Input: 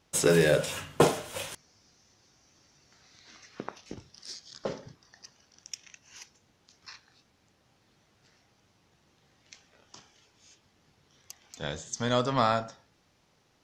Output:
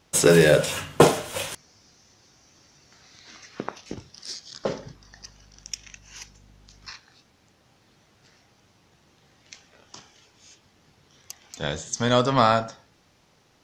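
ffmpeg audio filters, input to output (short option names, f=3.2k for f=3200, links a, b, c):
-filter_complex "[0:a]asettb=1/sr,asplit=3[a][b][c];[a]atrim=end=4.764[d];[b]atrim=start=4.76:end=6.91,asetpts=PTS-STARTPTS,afade=t=in:d=0.004:c=qsin,afade=t=out:st=2.146:d=0.004:c=qsin,aeval=exprs='val(0)+0.001*(sin(2*PI*50*n/s)+sin(2*PI*2*50*n/s)/2+sin(2*PI*3*50*n/s)/3+sin(2*PI*4*50*n/s)/4+sin(2*PI*5*50*n/s)/5)':c=same[e];[c]atrim=start=6.906[f];[d][e]acrossfade=d=0.004:c1=hsin:c2=qsin[g];[g][f]acrossfade=d=0.004:c1=qsin:c2=hsin,volume=6.5dB"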